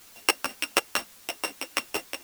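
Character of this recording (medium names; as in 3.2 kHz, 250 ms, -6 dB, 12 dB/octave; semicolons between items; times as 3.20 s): a buzz of ramps at a fixed pitch in blocks of 16 samples; chopped level 4.1 Hz, depth 65%, duty 20%; a quantiser's noise floor 10-bit, dither triangular; a shimmering, thickened sound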